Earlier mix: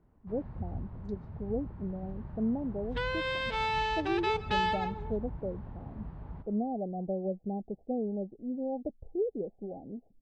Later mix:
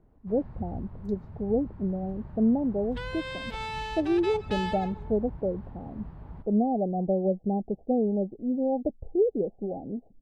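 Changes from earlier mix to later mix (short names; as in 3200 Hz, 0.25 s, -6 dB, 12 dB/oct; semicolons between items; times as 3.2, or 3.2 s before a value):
speech +7.5 dB; second sound -5.0 dB; master: remove air absorption 89 m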